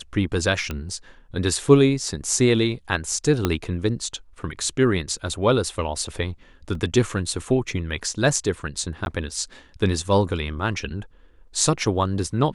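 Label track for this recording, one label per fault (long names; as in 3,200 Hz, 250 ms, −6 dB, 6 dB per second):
0.710000	0.710000	click −14 dBFS
3.450000	3.450000	click −6 dBFS
6.750000	6.750000	drop-out 2.6 ms
9.050000	9.060000	drop-out 11 ms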